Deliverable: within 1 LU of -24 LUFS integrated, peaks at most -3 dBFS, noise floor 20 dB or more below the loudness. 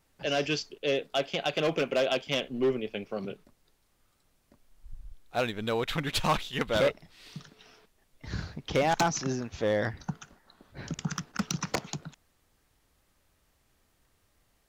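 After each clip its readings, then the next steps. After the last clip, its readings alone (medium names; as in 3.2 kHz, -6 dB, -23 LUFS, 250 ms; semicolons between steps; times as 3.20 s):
clipped samples 0.6%; clipping level -19.5 dBFS; loudness -30.5 LUFS; peak level -19.5 dBFS; loudness target -24.0 LUFS
-> clip repair -19.5 dBFS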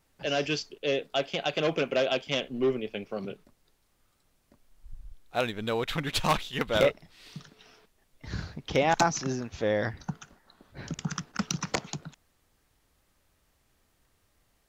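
clipped samples 0.0%; loudness -30.0 LUFS; peak level -10.5 dBFS; loudness target -24.0 LUFS
-> trim +6 dB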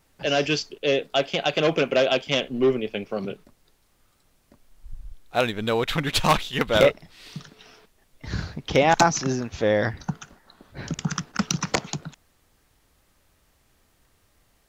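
loudness -24.0 LUFS; peak level -4.5 dBFS; noise floor -65 dBFS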